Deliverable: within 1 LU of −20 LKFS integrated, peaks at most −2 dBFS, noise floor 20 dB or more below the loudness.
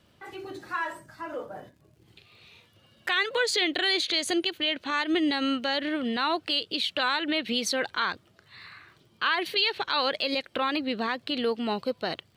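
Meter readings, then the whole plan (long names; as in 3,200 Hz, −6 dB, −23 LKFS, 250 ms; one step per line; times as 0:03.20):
crackle rate 43 per second; integrated loudness −27.0 LKFS; sample peak −13.0 dBFS; target loudness −20.0 LKFS
→ click removal
level +7 dB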